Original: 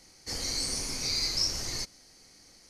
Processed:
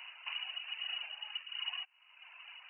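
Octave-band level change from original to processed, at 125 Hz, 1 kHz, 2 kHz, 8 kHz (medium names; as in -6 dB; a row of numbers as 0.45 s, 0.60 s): under -40 dB, -5.5 dB, 0.0 dB, under -40 dB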